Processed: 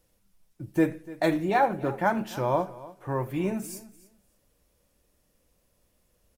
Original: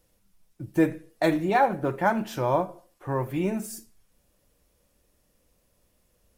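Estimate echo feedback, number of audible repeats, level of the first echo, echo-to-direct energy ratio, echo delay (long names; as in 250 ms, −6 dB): 17%, 2, −18.5 dB, −18.5 dB, 294 ms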